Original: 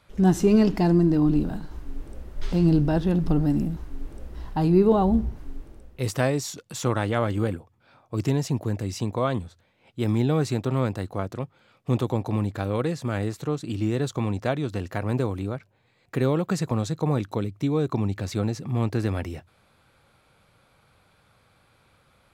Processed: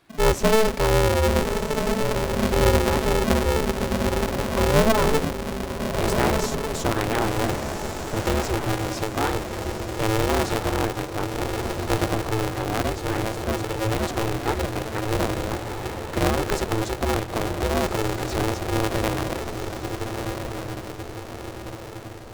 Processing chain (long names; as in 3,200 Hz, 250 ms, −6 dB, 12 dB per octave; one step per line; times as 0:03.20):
feedback delay with all-pass diffusion 1,380 ms, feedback 52%, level −5 dB
ring modulator with a square carrier 220 Hz